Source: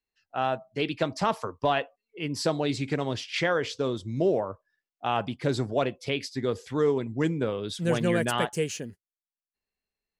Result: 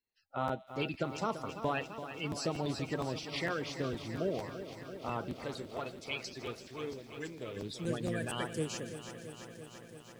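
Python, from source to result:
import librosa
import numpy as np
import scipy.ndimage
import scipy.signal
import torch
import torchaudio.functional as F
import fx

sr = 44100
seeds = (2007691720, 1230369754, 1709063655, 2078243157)

y = fx.spec_quant(x, sr, step_db=30)
y = fx.peak_eq(y, sr, hz=1200.0, db=-3.0, octaves=1.8)
y = fx.echo_wet_highpass(y, sr, ms=162, feedback_pct=73, hz=2800.0, wet_db=-15.5)
y = fx.rider(y, sr, range_db=5, speed_s=0.5)
y = fx.peak_eq(y, sr, hz=170.0, db=-12.5, octaves=2.7, at=(5.44, 7.57))
y = fx.buffer_crackle(y, sr, first_s=0.47, period_s=0.23, block=512, kind='repeat')
y = fx.echo_crushed(y, sr, ms=337, feedback_pct=80, bits=9, wet_db=-11.0)
y = y * 10.0 ** (-7.0 / 20.0)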